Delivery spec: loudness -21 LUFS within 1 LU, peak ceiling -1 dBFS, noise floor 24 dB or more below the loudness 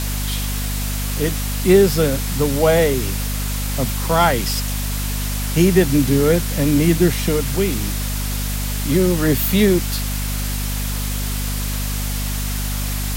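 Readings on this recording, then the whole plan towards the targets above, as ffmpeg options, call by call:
hum 50 Hz; highest harmonic 250 Hz; hum level -21 dBFS; noise floor -23 dBFS; noise floor target -43 dBFS; loudness -19.0 LUFS; peak level -1.5 dBFS; loudness target -21.0 LUFS
-> -af "bandreject=f=50:t=h:w=4,bandreject=f=100:t=h:w=4,bandreject=f=150:t=h:w=4,bandreject=f=200:t=h:w=4,bandreject=f=250:t=h:w=4"
-af "afftdn=nr=20:nf=-23"
-af "volume=0.794"

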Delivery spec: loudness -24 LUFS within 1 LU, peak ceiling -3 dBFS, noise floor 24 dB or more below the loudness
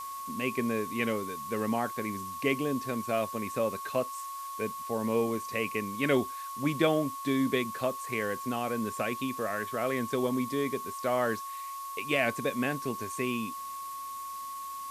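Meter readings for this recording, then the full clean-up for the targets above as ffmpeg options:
steady tone 1.1 kHz; tone level -37 dBFS; noise floor -40 dBFS; noise floor target -56 dBFS; loudness -31.5 LUFS; peak level -12.5 dBFS; loudness target -24.0 LUFS
-> -af "bandreject=f=1100:w=30"
-af "afftdn=nr=16:nf=-40"
-af "volume=2.37"

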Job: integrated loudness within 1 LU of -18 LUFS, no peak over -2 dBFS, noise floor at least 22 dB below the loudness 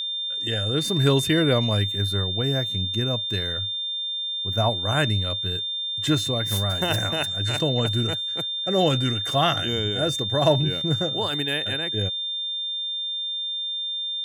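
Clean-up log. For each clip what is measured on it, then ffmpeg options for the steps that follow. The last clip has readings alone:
steady tone 3.6 kHz; tone level -26 dBFS; loudness -23.0 LUFS; peak level -7.5 dBFS; loudness target -18.0 LUFS
-> -af "bandreject=f=3600:w=30"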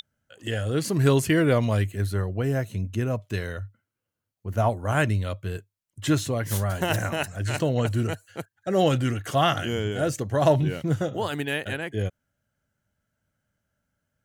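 steady tone not found; loudness -25.5 LUFS; peak level -8.0 dBFS; loudness target -18.0 LUFS
-> -af "volume=2.37,alimiter=limit=0.794:level=0:latency=1"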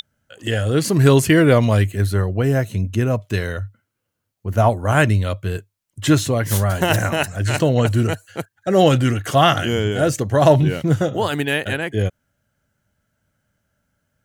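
loudness -18.0 LUFS; peak level -2.0 dBFS; noise floor -77 dBFS

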